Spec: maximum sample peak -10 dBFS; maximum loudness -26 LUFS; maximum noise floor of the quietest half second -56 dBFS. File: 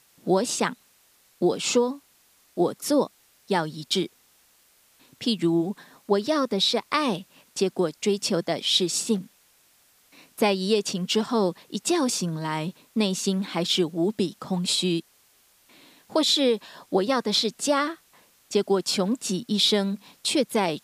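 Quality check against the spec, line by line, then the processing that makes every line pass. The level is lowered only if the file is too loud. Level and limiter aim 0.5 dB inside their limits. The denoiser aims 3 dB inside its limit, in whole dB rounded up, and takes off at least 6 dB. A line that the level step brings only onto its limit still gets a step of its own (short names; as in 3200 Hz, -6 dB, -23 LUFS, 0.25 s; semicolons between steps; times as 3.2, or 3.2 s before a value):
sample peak -8.0 dBFS: fail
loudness -25.0 LUFS: fail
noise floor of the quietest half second -61 dBFS: OK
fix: gain -1.5 dB; limiter -10.5 dBFS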